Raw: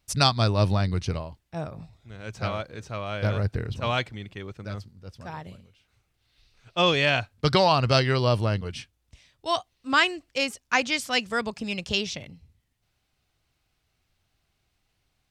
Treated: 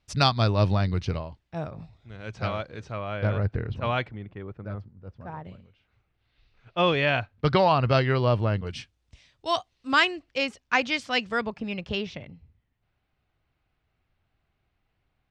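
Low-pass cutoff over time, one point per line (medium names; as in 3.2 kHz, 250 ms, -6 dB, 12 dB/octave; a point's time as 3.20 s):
4.4 kHz
from 2.92 s 2.5 kHz
from 4.11 s 1.4 kHz
from 5.45 s 2.6 kHz
from 8.67 s 6.6 kHz
from 10.05 s 4 kHz
from 11.45 s 2.3 kHz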